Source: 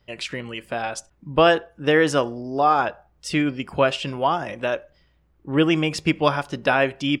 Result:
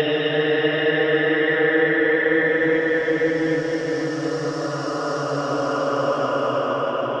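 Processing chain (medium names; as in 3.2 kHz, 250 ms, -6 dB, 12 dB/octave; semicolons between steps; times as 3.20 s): LFO low-pass saw up 8.9 Hz 540–5900 Hz; Paulstretch 21×, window 0.25 s, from 1.89 s; trim -4.5 dB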